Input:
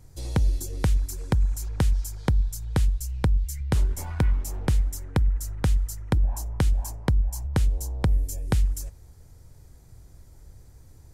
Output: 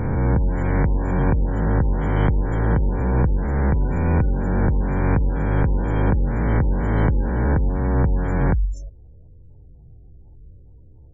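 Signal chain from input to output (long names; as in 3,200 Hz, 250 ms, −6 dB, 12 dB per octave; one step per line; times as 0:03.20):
peak hold with a rise ahead of every peak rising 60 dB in 2.63 s
low-pass filter 4,200 Hz 12 dB per octave
gate on every frequency bin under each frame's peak −30 dB strong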